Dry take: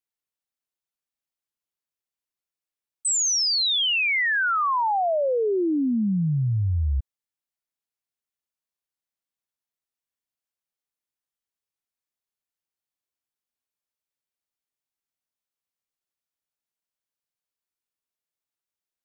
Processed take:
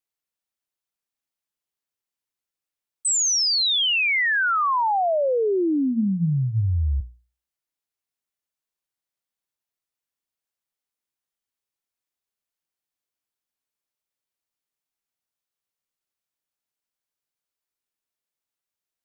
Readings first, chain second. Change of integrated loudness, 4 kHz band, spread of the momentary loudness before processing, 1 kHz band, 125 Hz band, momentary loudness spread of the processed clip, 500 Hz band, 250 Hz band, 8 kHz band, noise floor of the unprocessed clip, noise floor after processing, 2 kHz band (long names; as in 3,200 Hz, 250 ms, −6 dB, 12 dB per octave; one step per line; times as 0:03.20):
+1.5 dB, +1.5 dB, 6 LU, +1.5 dB, +1.0 dB, 6 LU, +1.5 dB, +1.0 dB, +1.5 dB, below −85 dBFS, below −85 dBFS, +1.5 dB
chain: mains-hum notches 60/120/180/240 Hz
level +1.5 dB